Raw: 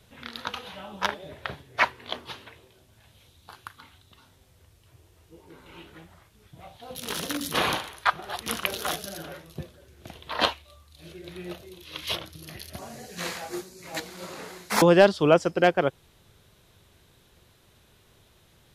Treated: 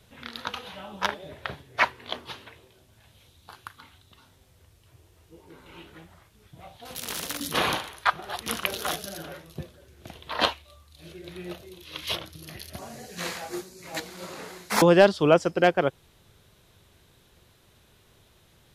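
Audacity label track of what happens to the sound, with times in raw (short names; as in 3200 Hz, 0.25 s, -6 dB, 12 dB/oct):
6.850000	7.400000	spectral compressor 2:1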